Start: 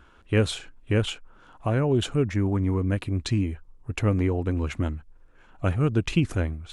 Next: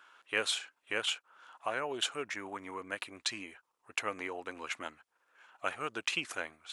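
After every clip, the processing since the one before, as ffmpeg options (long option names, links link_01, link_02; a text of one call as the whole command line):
ffmpeg -i in.wav -af "highpass=930" out.wav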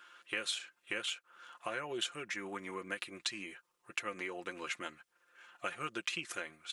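ffmpeg -i in.wav -af "equalizer=frequency=820:width_type=o:width=0.94:gain=-8.5,acompressor=threshold=-40dB:ratio=3,aecho=1:1:5.7:0.56,volume=3dB" out.wav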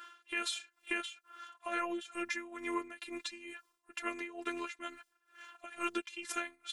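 ffmpeg -i in.wav -af "afftfilt=real='hypot(re,im)*cos(PI*b)':imag='0':win_size=512:overlap=0.75,alimiter=level_in=5dB:limit=-24dB:level=0:latency=1:release=93,volume=-5dB,tremolo=f=2.2:d=0.82,volume=10dB" out.wav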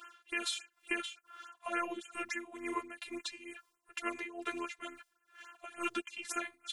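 ffmpeg -i in.wav -af "afftfilt=real='re*(1-between(b*sr/1024,230*pow(4700/230,0.5+0.5*sin(2*PI*3.5*pts/sr))/1.41,230*pow(4700/230,0.5+0.5*sin(2*PI*3.5*pts/sr))*1.41))':imag='im*(1-between(b*sr/1024,230*pow(4700/230,0.5+0.5*sin(2*PI*3.5*pts/sr))/1.41,230*pow(4700/230,0.5+0.5*sin(2*PI*3.5*pts/sr))*1.41))':win_size=1024:overlap=0.75,volume=1dB" out.wav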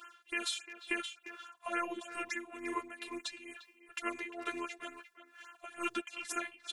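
ffmpeg -i in.wav -filter_complex "[0:a]asplit=2[link_01][link_02];[link_02]adelay=350,highpass=300,lowpass=3400,asoftclip=type=hard:threshold=-27dB,volume=-12dB[link_03];[link_01][link_03]amix=inputs=2:normalize=0" out.wav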